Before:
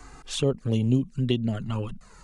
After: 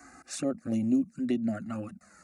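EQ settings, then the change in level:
high-pass filter 89 Hz 24 dB per octave
phaser with its sweep stopped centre 650 Hz, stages 8
0.0 dB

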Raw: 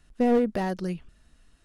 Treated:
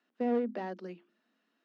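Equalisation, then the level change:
Butterworth high-pass 200 Hz 72 dB per octave
high-frequency loss of the air 190 metres
mains-hum notches 50/100/150/200/250/300/350 Hz
−7.5 dB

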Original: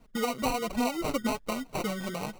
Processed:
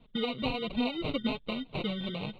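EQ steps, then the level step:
drawn EQ curve 250 Hz 0 dB, 1,900 Hz −14 dB, 3,600 Hz +10 dB, 5,800 Hz −29 dB
dynamic equaliser 970 Hz, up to −5 dB, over −49 dBFS, Q 0.95
graphic EQ with 10 bands 125 Hz +7 dB, 500 Hz +5 dB, 1,000 Hz +7 dB, 2,000 Hz +10 dB
−3.0 dB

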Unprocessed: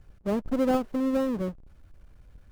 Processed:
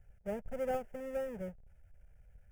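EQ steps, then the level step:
phaser with its sweep stopped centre 1,100 Hz, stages 6
−7.0 dB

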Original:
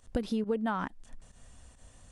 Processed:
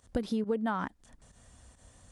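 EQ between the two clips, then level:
high-pass filter 42 Hz
parametric band 2,700 Hz −4.5 dB 0.25 octaves
0.0 dB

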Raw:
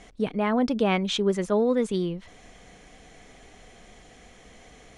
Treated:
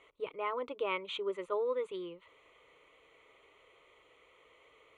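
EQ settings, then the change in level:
resonant band-pass 1,200 Hz, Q 0.69
phaser with its sweep stopped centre 1,100 Hz, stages 8
−3.5 dB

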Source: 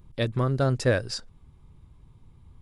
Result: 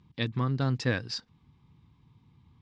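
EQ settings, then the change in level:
loudspeaker in its box 130–5,500 Hz, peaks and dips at 390 Hz −8 dB, 560 Hz −8 dB, 1,400 Hz −6 dB
parametric band 630 Hz −8 dB 0.44 octaves
0.0 dB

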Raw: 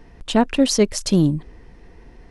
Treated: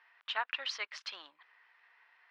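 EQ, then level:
high-pass filter 1,200 Hz 24 dB per octave
low-pass filter 5,600 Hz 12 dB per octave
high-frequency loss of the air 330 metres
−1.5 dB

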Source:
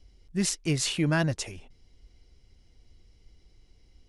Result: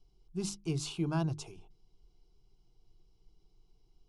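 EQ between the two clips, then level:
high-shelf EQ 4,600 Hz −10.5 dB
mains-hum notches 50/100/150/200/250/300/350 Hz
phaser with its sweep stopped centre 370 Hz, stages 8
−4.0 dB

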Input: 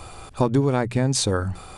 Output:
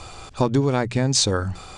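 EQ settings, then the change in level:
low-pass filter 7,100 Hz 24 dB per octave
high-shelf EQ 3,600 Hz +9 dB
0.0 dB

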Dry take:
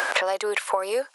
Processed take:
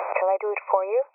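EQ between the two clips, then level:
linear-phase brick-wall band-pass 280–2,600 Hz
phaser with its sweep stopped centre 680 Hz, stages 4
+4.5 dB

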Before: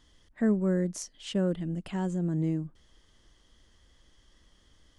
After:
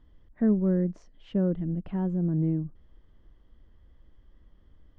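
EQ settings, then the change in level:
head-to-tape spacing loss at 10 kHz 36 dB
spectral tilt −1.5 dB per octave
0.0 dB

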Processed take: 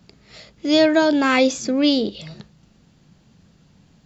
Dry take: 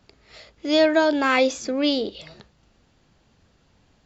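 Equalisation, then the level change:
parametric band 170 Hz +13.5 dB 1.2 octaves
high-shelf EQ 3,900 Hz +6.5 dB
0.0 dB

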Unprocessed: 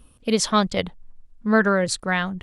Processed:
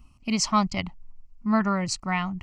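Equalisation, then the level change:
phaser with its sweep stopped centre 2,400 Hz, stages 8
0.0 dB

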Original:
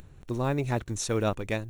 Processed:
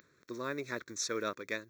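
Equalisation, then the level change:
high-pass filter 450 Hz 12 dB per octave
phaser with its sweep stopped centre 2,900 Hz, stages 6
0.0 dB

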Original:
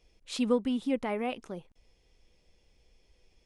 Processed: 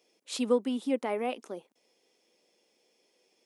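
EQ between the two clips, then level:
high-pass filter 230 Hz 24 dB per octave
parametric band 490 Hz +6.5 dB 2.9 octaves
high-shelf EQ 4,800 Hz +11 dB
−4.5 dB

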